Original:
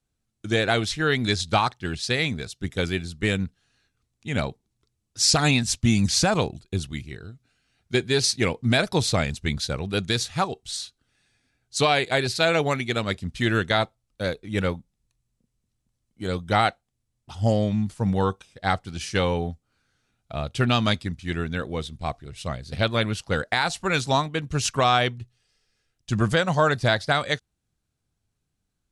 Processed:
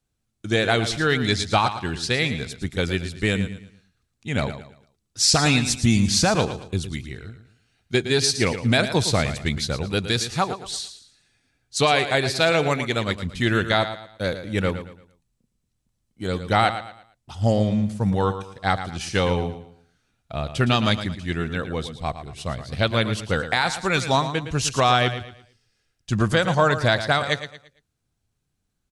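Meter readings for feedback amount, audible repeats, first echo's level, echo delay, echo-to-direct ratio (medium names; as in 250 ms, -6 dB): 33%, 3, -11.0 dB, 113 ms, -10.5 dB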